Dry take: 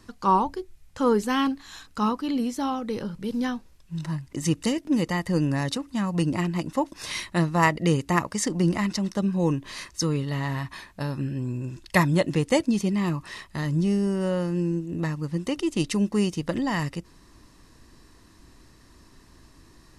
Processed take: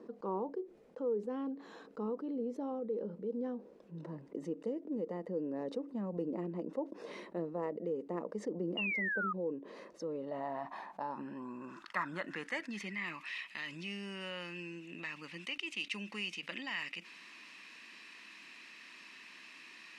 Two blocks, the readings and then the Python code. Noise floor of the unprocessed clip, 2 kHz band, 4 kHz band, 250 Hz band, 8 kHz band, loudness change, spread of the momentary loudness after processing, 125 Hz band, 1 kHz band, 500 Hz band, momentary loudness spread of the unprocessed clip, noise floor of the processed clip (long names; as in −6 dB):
−54 dBFS, −7.5 dB, −10.0 dB, −16.0 dB, −24.0 dB, −13.5 dB, 14 LU, −23.0 dB, −15.5 dB, −10.0 dB, 10 LU, −58 dBFS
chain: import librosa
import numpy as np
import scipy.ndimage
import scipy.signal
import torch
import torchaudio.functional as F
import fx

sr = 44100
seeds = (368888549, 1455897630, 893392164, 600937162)

y = fx.filter_sweep_bandpass(x, sr, from_hz=470.0, to_hz=2500.0, start_s=9.72, end_s=13.34, q=5.0)
y = fx.low_shelf_res(y, sr, hz=140.0, db=-12.0, q=3.0)
y = fx.rider(y, sr, range_db=4, speed_s=0.5)
y = fx.spec_paint(y, sr, seeds[0], shape='fall', start_s=8.77, length_s=0.56, low_hz=1200.0, high_hz=2900.0, level_db=-31.0)
y = fx.env_flatten(y, sr, amount_pct=50)
y = y * librosa.db_to_amplitude(-8.0)